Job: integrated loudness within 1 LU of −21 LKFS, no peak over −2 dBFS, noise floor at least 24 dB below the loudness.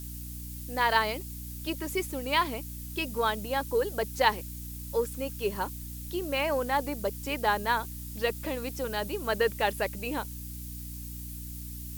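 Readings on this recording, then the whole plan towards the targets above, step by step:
mains hum 60 Hz; hum harmonics up to 300 Hz; level of the hum −39 dBFS; background noise floor −40 dBFS; target noise floor −55 dBFS; integrated loudness −31.0 LKFS; sample peak −8.0 dBFS; target loudness −21.0 LKFS
→ hum removal 60 Hz, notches 5
broadband denoise 15 dB, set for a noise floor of −40 dBFS
level +10 dB
brickwall limiter −2 dBFS

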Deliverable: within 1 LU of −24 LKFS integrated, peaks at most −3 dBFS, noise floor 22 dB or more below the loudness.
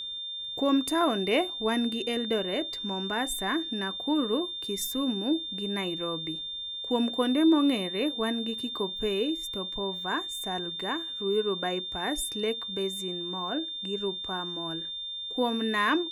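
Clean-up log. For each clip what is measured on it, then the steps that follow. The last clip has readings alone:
interfering tone 3,600 Hz; level of the tone −34 dBFS; integrated loudness −29.0 LKFS; sample peak −12.5 dBFS; target loudness −24.0 LKFS
→ notch filter 3,600 Hz, Q 30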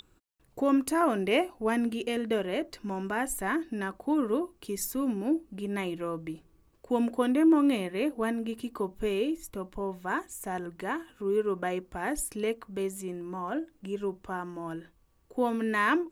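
interfering tone none found; integrated loudness −30.5 LKFS; sample peak −13.0 dBFS; target loudness −24.0 LKFS
→ level +6.5 dB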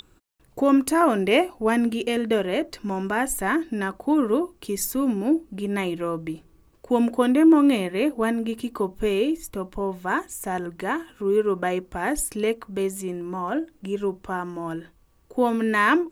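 integrated loudness −24.0 LKFS; sample peak −6.5 dBFS; background noise floor −59 dBFS

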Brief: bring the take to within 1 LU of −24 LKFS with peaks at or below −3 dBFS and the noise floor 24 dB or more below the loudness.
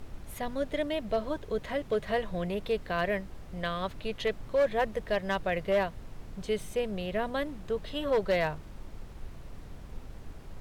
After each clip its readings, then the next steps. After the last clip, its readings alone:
share of clipped samples 0.4%; peaks flattened at −20.5 dBFS; background noise floor −46 dBFS; target noise floor −56 dBFS; integrated loudness −32.0 LKFS; sample peak −20.5 dBFS; target loudness −24.0 LKFS
→ clipped peaks rebuilt −20.5 dBFS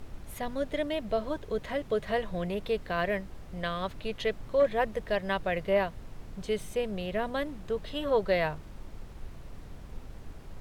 share of clipped samples 0.0%; background noise floor −46 dBFS; target noise floor −56 dBFS
→ noise reduction from a noise print 10 dB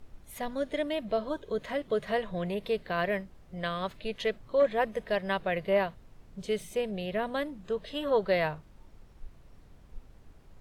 background noise floor −55 dBFS; target noise floor −56 dBFS
→ noise reduction from a noise print 6 dB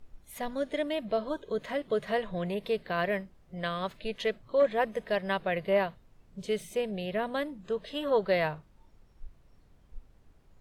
background noise floor −61 dBFS; integrated loudness −31.5 LKFS; sample peak −15.0 dBFS; target loudness −24.0 LKFS
→ level +7.5 dB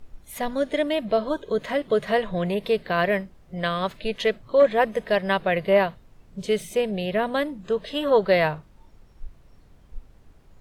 integrated loudness −24.0 LKFS; sample peak −7.5 dBFS; background noise floor −54 dBFS

